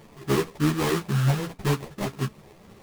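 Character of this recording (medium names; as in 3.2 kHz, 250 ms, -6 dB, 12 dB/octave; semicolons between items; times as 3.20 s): aliases and images of a low sample rate 1.5 kHz, jitter 20%; a shimmering, thickened sound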